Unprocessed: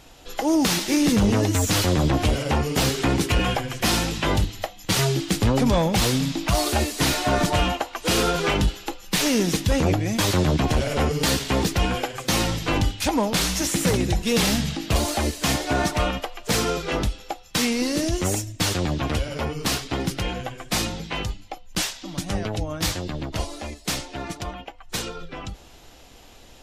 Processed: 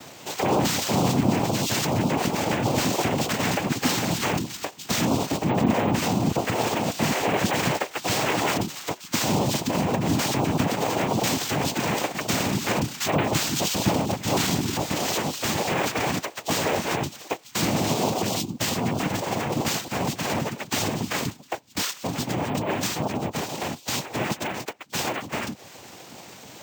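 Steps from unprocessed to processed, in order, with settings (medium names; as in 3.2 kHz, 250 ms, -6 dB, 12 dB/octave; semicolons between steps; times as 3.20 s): reverb removal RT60 0.51 s; 5.26–7.36 s: treble shelf 4.5 kHz -12 dB; peak limiter -24 dBFS, peak gain reduction 11 dB; noise-vocoded speech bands 4; careless resampling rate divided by 2×, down filtered, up hold; trim +8.5 dB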